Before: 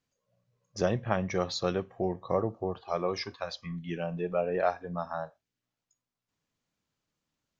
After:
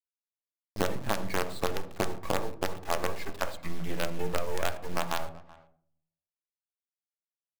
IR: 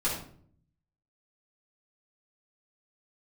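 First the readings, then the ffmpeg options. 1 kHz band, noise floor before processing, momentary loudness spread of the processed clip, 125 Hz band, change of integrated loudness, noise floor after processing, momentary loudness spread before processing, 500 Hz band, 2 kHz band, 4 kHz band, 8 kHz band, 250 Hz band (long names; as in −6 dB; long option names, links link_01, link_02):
+0.5 dB, below −85 dBFS, 5 LU, −3.0 dB, −1.5 dB, below −85 dBFS, 8 LU, −3.5 dB, +4.0 dB, +1.5 dB, can't be measured, −3.0 dB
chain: -filter_complex "[0:a]lowpass=frequency=3200:width=0.5412,lowpass=frequency=3200:width=1.3066,lowshelf=frequency=86:gain=-8.5,acompressor=threshold=-38dB:ratio=5,acrusher=bits=6:dc=4:mix=0:aa=0.000001,asplit=2[link_01][link_02];[link_02]adelay=380,highpass=300,lowpass=3400,asoftclip=type=hard:threshold=-32.5dB,volume=-19dB[link_03];[link_01][link_03]amix=inputs=2:normalize=0,asplit=2[link_04][link_05];[1:a]atrim=start_sample=2205,highshelf=frequency=2500:gain=-11.5[link_06];[link_05][link_06]afir=irnorm=-1:irlink=0,volume=-14dB[link_07];[link_04][link_07]amix=inputs=2:normalize=0,volume=9dB"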